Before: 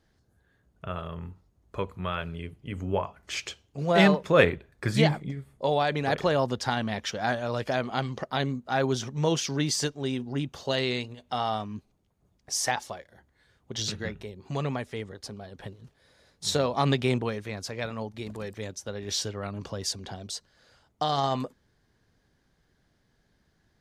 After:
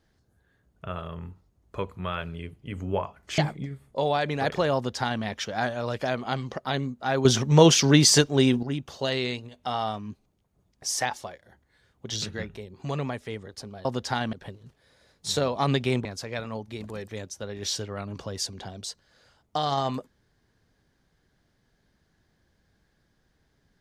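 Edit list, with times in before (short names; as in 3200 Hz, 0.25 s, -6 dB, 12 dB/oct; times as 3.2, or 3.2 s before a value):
3.38–5.04 cut
6.41–6.89 copy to 15.51
8.91–10.29 gain +10 dB
17.23–17.51 cut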